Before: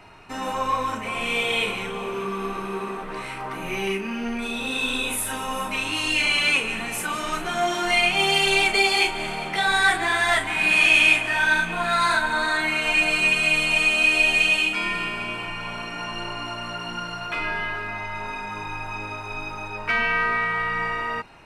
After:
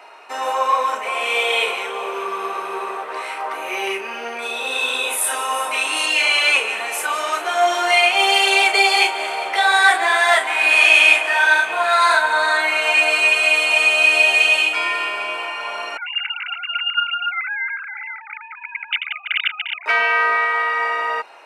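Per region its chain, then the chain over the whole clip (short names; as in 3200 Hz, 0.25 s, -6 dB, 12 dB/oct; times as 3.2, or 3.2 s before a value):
5.21–6.06 bell 9000 Hz +9 dB 0.24 oct + doubler 22 ms -5.5 dB
15.97–19.86 sine-wave speech + inverse Chebyshev high-pass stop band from 390 Hz, stop band 60 dB + comb 1.4 ms, depth 94%
whole clip: HPF 500 Hz 24 dB/oct; tilt shelf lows +3.5 dB, about 820 Hz; gain +7.5 dB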